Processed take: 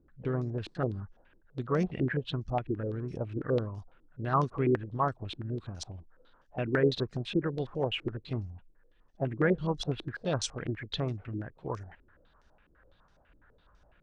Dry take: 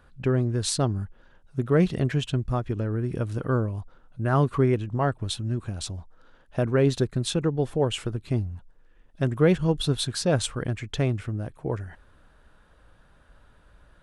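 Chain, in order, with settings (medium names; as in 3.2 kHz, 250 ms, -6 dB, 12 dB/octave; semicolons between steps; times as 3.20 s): harmony voices +3 st -15 dB; step-sequenced low-pass 12 Hz 330–5800 Hz; trim -9 dB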